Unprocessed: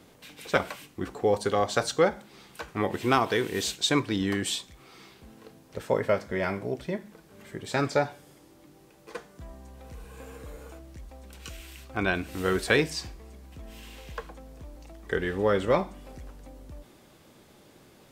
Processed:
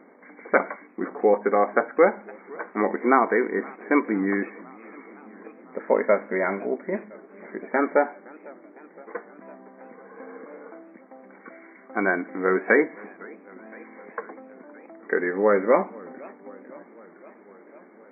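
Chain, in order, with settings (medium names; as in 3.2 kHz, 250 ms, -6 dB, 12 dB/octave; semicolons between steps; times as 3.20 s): brick-wall FIR band-pass 190–2300 Hz; modulated delay 509 ms, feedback 70%, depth 220 cents, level -23.5 dB; trim +5 dB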